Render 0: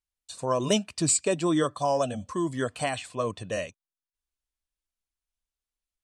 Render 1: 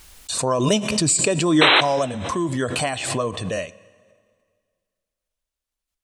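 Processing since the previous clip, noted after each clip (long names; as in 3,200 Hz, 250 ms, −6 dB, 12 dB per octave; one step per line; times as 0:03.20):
sound drawn into the spectrogram noise, 0:01.61–0:01.81, 280–4,100 Hz −18 dBFS
dense smooth reverb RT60 2 s, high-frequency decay 0.9×, DRR 19 dB
background raised ahead of every attack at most 39 dB per second
level +4 dB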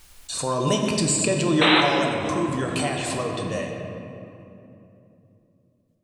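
rectangular room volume 120 cubic metres, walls hard, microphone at 0.37 metres
level −5 dB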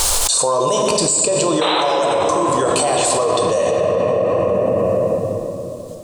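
octave-band graphic EQ 125/250/500/1,000/2,000/4,000/8,000 Hz −4/−6/+11/+9/−6/+5/+11 dB
envelope flattener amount 100%
level −7 dB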